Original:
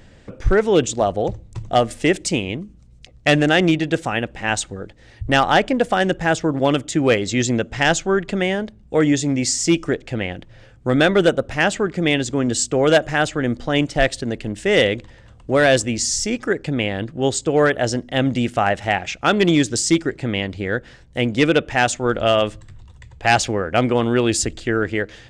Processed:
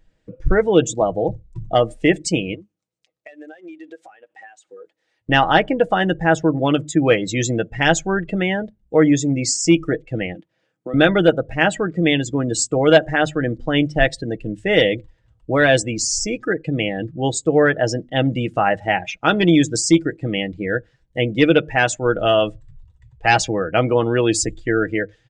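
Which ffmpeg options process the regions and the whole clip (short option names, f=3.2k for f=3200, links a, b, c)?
-filter_complex "[0:a]asettb=1/sr,asplit=3[a][b][c];[a]atrim=end=2.544[d];[b]atrim=start=2.54:end=5.29,asetpts=PTS-STARTPTS,afade=t=in:d=0.004:c=qsin,afade=t=out:st=2.746:d=0.004:c=qsin,highpass=430,acompressor=threshold=-32dB:ratio=20:attack=3.2:release=140:knee=1:detection=peak[e];[c]atrim=start=5.286[f];[d][e]acrossfade=d=0.004:c1=hsin:c2=qsin[g];[g][f]acrossfade=d=0.004:c1=qsin:c2=hsin,asettb=1/sr,asplit=3[h][i][j];[h]atrim=end=10.354[k];[i]atrim=start=10.35:end=10.94,asetpts=PTS-STARTPTS,afade=t=in:d=0.004:c=qsin,afade=t=out:st=0.586:d=0.004:c=qsin,highpass=f=180:w=0.5412,highpass=f=180:w=1.3066,acompressor=threshold=-24dB:ratio=4:attack=3.2:release=140:knee=1:detection=peak[l];[j]atrim=start=10.936[m];[k][l]acrossfade=d=0.004:c1=hsin:c2=qsin[n];[n][m]acrossfade=d=0.004:c1=qsin:c2=hsin,bandreject=f=50:t=h:w=6,bandreject=f=100:t=h:w=6,bandreject=f=150:t=h:w=6,afftdn=nr=20:nf=-28,aecho=1:1:6.3:0.48"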